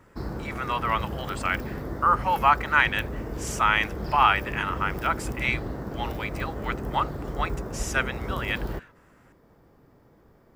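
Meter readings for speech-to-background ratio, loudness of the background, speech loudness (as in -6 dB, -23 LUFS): 8.0 dB, -34.5 LUFS, -26.5 LUFS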